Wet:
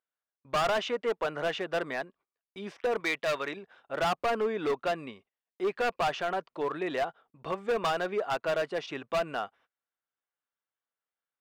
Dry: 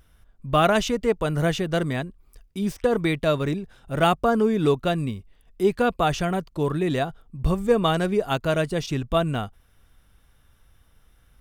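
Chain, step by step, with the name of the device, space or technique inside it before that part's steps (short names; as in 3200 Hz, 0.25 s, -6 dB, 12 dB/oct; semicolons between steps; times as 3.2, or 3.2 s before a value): walkie-talkie (BPF 550–2600 Hz; hard clip -24 dBFS, distortion -7 dB; gate -58 dBFS, range -27 dB); 3–3.57 tilt shelf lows -4.5 dB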